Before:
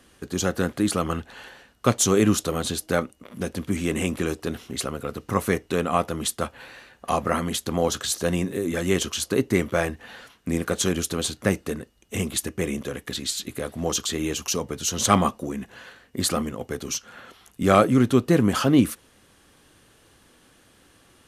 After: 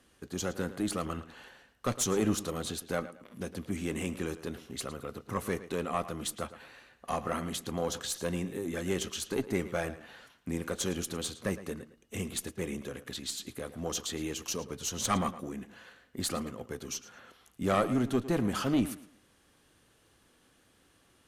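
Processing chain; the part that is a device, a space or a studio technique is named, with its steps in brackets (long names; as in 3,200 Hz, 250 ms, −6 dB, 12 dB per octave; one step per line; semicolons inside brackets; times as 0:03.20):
rockabilly slapback (tube saturation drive 9 dB, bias 0.5; tape delay 110 ms, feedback 30%, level −13.5 dB, low-pass 5,100 Hz)
level −7 dB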